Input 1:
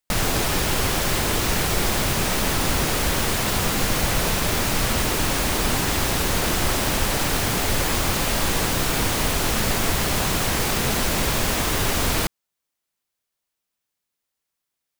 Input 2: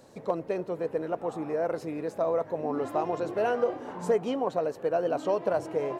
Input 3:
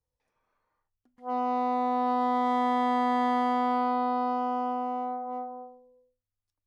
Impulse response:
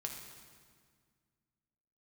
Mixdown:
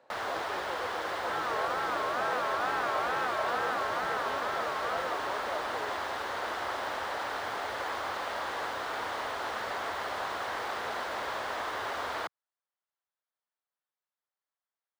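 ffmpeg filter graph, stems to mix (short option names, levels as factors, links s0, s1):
-filter_complex "[0:a]equalizer=f=160:t=o:w=0.67:g=-11,equalizer=f=2500:t=o:w=0.67:g=-10,equalizer=f=16000:t=o:w=0.67:g=-7,volume=0.631[s0];[1:a]alimiter=level_in=1.06:limit=0.0631:level=0:latency=1,volume=0.944,volume=0.794[s1];[2:a]aeval=exprs='val(0)*sin(2*PI*460*n/s+460*0.3/2.2*sin(2*PI*2.2*n/s))':c=same,volume=0.891[s2];[s0][s1][s2]amix=inputs=3:normalize=0,highpass=98,acrossover=split=530 3200:gain=0.112 1 0.0708[s3][s4][s5];[s3][s4][s5]amix=inputs=3:normalize=0"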